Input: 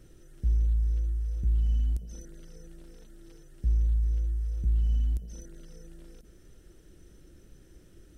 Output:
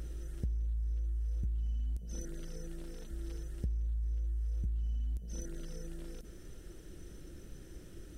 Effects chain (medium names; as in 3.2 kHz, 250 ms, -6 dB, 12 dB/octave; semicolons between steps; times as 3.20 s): on a send: reverse echo 531 ms -22.5 dB; on the sum: compression 10:1, threshold -37 dBFS, peak gain reduction 15.5 dB; trim +4.5 dB